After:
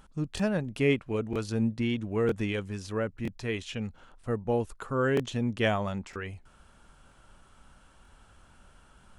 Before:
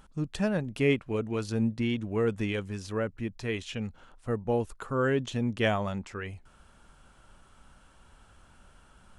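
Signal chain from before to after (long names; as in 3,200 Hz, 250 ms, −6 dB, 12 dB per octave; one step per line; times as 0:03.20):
regular buffer underruns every 0.96 s, samples 1,024, repeat, from 0:00.35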